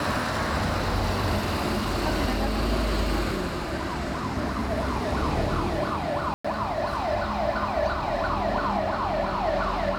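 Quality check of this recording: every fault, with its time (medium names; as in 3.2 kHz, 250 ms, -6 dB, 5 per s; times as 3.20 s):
6.34–6.45 s: dropout 105 ms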